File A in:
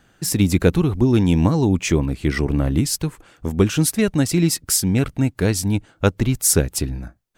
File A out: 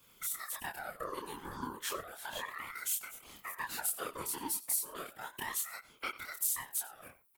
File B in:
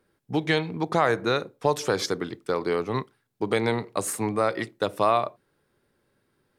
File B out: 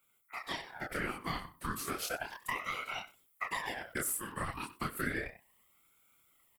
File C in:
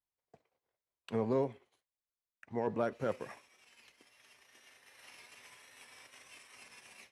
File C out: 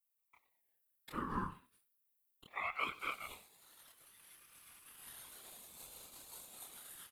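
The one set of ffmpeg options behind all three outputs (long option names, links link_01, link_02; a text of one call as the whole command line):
ffmpeg -i in.wav -filter_complex "[0:a]aexciter=amount=3.2:drive=10:freq=9200,asoftclip=type=hard:threshold=-0.5dB,acompressor=threshold=-30dB:ratio=6,highpass=frequency=330:width=0.5412,highpass=frequency=330:width=1.3066,asplit=2[link_01][link_02];[link_02]adelay=27,volume=-2dB[link_03];[link_01][link_03]amix=inputs=2:normalize=0,asplit=2[link_04][link_05];[link_05]adelay=93.29,volume=-17dB,highshelf=frequency=4000:gain=-2.1[link_06];[link_04][link_06]amix=inputs=2:normalize=0,afftfilt=real='hypot(re,im)*cos(2*PI*random(0))':imag='hypot(re,im)*sin(2*PI*random(1))':win_size=512:overlap=0.75,dynaudnorm=framelen=300:gausssize=3:maxgain=4dB,aeval=exprs='val(0)*sin(2*PI*1200*n/s+1200*0.5/0.33*sin(2*PI*0.33*n/s))':channel_layout=same" out.wav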